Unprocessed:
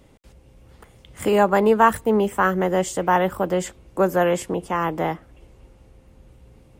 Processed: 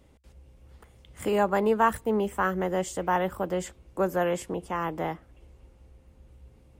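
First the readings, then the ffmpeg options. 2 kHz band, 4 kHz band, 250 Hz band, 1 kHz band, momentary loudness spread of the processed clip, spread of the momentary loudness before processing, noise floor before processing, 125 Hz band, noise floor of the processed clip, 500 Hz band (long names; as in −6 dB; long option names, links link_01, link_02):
−7.0 dB, −7.0 dB, −7.0 dB, −7.0 dB, 10 LU, 10 LU, −53 dBFS, −7.0 dB, −58 dBFS, −7.0 dB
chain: -af "equalizer=frequency=66:width=7:gain=11,volume=-7dB"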